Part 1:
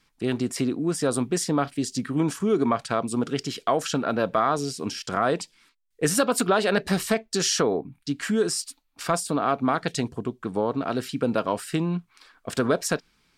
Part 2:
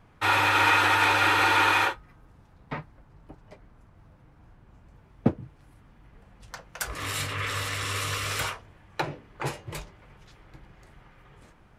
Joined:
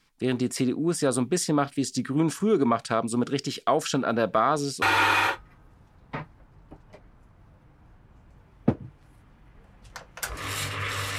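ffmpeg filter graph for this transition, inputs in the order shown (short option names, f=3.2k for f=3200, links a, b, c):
-filter_complex "[0:a]apad=whole_dur=11.18,atrim=end=11.18,atrim=end=4.822[a];[1:a]atrim=start=1.398:end=7.76[b];[a][b]acrossfade=d=0.004:c1=hsin:c2=hsin"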